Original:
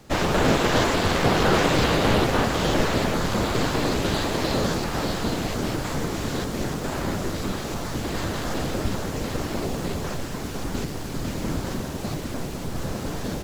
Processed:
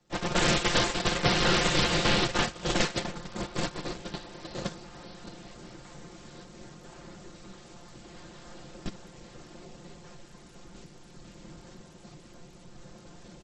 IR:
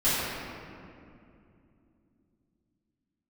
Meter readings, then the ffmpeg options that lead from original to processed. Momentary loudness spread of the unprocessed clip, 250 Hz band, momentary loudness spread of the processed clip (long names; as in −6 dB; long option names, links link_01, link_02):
11 LU, −10.0 dB, 22 LU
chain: -filter_complex "[0:a]agate=range=-26dB:threshold=-19dB:ratio=16:detection=peak,highshelf=frequency=3700:gain=3.5,aecho=1:1:5.7:0.67,acrossover=split=120|1700[link_01][link_02][link_03];[link_01]acompressor=threshold=-34dB:ratio=4[link_04];[link_02]acompressor=threshold=-32dB:ratio=4[link_05];[link_03]acompressor=threshold=-30dB:ratio=4[link_06];[link_04][link_05][link_06]amix=inputs=3:normalize=0,volume=4dB" -ar 32000 -c:a sbc -b:a 64k